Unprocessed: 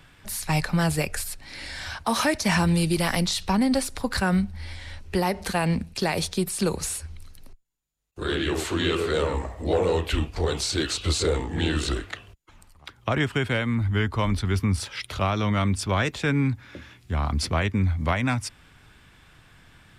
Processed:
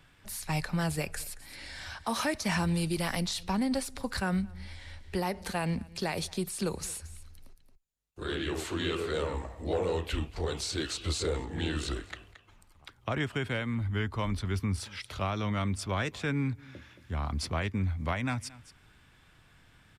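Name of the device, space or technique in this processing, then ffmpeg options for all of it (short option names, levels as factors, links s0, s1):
ducked delay: -filter_complex "[0:a]asplit=3[s0][s1][s2];[s1]adelay=224,volume=0.376[s3];[s2]apad=whole_len=891095[s4];[s3][s4]sidechaincompress=threshold=0.00891:ratio=8:attack=34:release=351[s5];[s0][s5]amix=inputs=2:normalize=0,volume=0.422"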